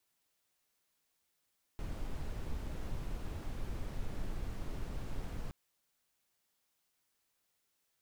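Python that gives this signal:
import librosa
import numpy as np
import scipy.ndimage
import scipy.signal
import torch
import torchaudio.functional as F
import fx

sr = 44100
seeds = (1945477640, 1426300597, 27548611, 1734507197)

y = fx.noise_colour(sr, seeds[0], length_s=3.72, colour='brown', level_db=-38.0)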